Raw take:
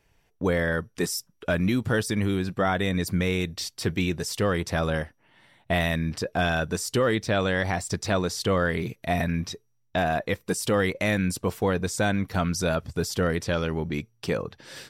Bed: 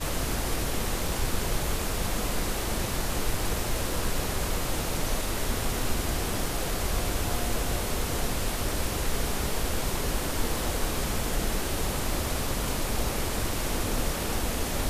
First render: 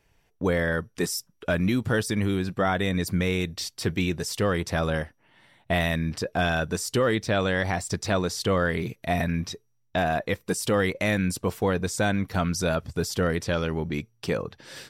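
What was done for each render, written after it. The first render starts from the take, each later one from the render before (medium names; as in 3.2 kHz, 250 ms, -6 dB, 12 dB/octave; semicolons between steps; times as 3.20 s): no audible change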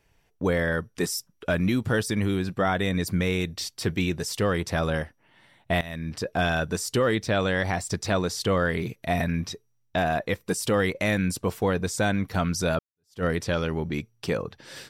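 5.81–6.28 s: fade in, from -17.5 dB; 12.79–13.24 s: fade in exponential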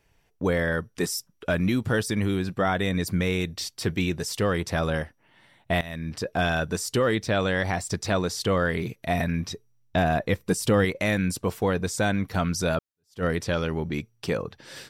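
9.51–10.85 s: bass shelf 280 Hz +6.5 dB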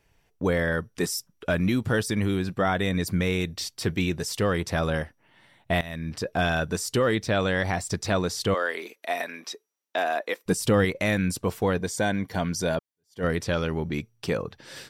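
8.54–10.46 s: Bessel high-pass 490 Hz, order 6; 11.78–13.24 s: comb of notches 1.3 kHz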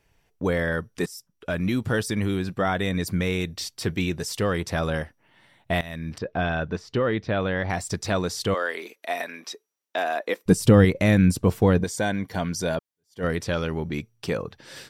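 1.06–1.78 s: fade in, from -13.5 dB; 6.18–7.70 s: distance through air 250 m; 10.26–11.84 s: bass shelf 390 Hz +10 dB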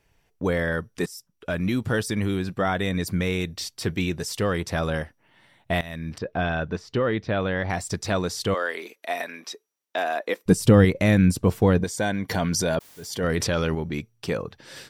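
12.29–13.75 s: level flattener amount 70%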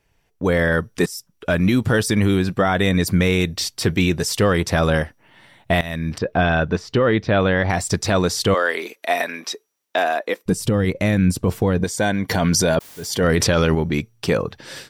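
level rider gain up to 8.5 dB; peak limiter -8 dBFS, peak gain reduction 7 dB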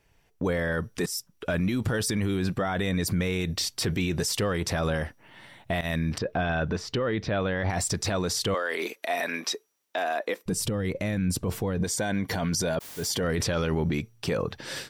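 peak limiter -19 dBFS, peak gain reduction 11 dB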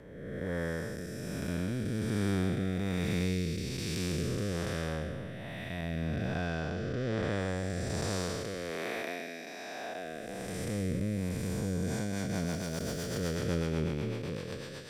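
spectral blur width 678 ms; rotary cabinet horn 1.2 Hz, later 8 Hz, at 11.62 s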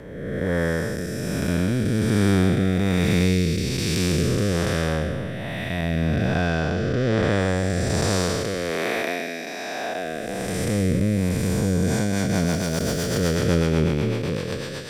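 trim +11.5 dB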